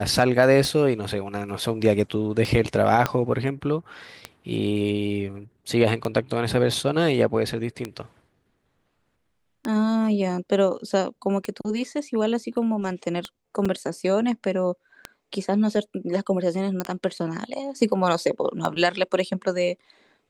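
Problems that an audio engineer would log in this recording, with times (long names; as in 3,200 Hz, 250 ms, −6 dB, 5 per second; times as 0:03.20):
scratch tick 33 1/3 rpm
0:03.06: click −7 dBFS
0:13.65: drop-out 4.7 ms
0:16.80: click −11 dBFS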